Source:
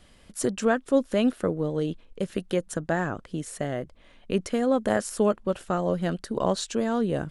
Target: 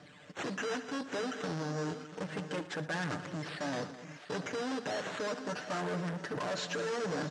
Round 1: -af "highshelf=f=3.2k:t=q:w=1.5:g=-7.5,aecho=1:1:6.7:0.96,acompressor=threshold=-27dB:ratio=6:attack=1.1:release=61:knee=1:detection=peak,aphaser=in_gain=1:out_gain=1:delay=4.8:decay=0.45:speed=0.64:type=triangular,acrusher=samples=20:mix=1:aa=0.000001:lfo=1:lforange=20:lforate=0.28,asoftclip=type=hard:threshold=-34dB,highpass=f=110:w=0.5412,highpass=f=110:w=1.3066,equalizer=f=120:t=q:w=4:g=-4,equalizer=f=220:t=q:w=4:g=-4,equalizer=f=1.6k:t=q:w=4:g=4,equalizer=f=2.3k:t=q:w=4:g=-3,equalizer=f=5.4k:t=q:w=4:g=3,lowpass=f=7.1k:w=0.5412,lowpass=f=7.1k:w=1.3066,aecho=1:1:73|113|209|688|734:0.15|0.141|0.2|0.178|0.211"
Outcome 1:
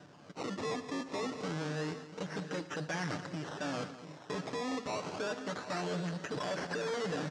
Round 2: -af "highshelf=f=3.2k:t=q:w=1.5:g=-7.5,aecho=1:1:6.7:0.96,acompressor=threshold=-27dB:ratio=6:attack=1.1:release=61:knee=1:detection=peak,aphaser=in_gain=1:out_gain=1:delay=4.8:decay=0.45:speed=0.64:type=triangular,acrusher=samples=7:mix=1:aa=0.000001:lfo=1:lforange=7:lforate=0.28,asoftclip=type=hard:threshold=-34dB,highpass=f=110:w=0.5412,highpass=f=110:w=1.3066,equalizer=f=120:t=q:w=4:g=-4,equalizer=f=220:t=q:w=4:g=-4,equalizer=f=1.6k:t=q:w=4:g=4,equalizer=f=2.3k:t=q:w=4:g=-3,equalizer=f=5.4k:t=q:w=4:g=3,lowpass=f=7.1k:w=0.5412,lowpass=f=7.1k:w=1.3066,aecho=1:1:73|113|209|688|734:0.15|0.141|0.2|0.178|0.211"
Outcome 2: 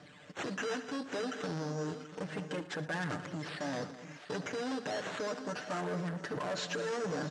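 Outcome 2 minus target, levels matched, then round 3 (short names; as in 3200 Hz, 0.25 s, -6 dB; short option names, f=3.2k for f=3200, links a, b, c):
compressor: peak gain reduction +5.5 dB
-af "highshelf=f=3.2k:t=q:w=1.5:g=-7.5,aecho=1:1:6.7:0.96,acompressor=threshold=-20.5dB:ratio=6:attack=1.1:release=61:knee=1:detection=peak,aphaser=in_gain=1:out_gain=1:delay=4.8:decay=0.45:speed=0.64:type=triangular,acrusher=samples=7:mix=1:aa=0.000001:lfo=1:lforange=7:lforate=0.28,asoftclip=type=hard:threshold=-34dB,highpass=f=110:w=0.5412,highpass=f=110:w=1.3066,equalizer=f=120:t=q:w=4:g=-4,equalizer=f=220:t=q:w=4:g=-4,equalizer=f=1.6k:t=q:w=4:g=4,equalizer=f=2.3k:t=q:w=4:g=-3,equalizer=f=5.4k:t=q:w=4:g=3,lowpass=f=7.1k:w=0.5412,lowpass=f=7.1k:w=1.3066,aecho=1:1:73|113|209|688|734:0.15|0.141|0.2|0.178|0.211"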